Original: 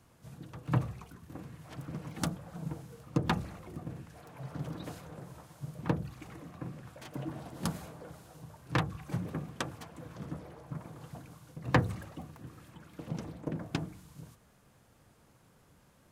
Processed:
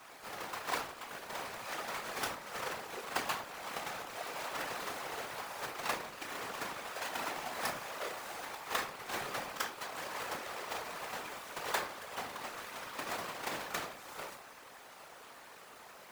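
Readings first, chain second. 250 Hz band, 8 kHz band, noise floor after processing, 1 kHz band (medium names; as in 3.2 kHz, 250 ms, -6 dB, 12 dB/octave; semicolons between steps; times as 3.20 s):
-13.0 dB, +7.0 dB, -54 dBFS, +4.0 dB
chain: square wave that keeps the level; high-pass 750 Hz 12 dB/octave; peaking EQ 1 kHz +3 dB 2.4 oct; compression 3:1, threshold -47 dBFS, peak gain reduction 21.5 dB; pre-echo 40 ms -14 dB; simulated room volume 350 m³, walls furnished, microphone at 1.9 m; whisper effect; trim +7.5 dB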